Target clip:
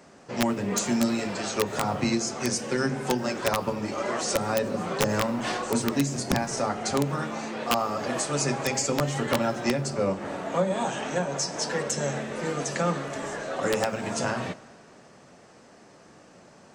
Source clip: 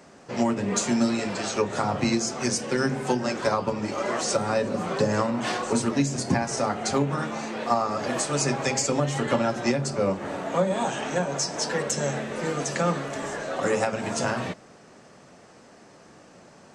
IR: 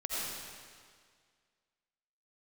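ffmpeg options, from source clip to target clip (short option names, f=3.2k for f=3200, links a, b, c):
-filter_complex "[0:a]aeval=exprs='(mod(4.22*val(0)+1,2)-1)/4.22':c=same,asplit=2[a][b];[1:a]atrim=start_sample=2205[c];[b][c]afir=irnorm=-1:irlink=0,volume=-23dB[d];[a][d]amix=inputs=2:normalize=0,volume=-2dB"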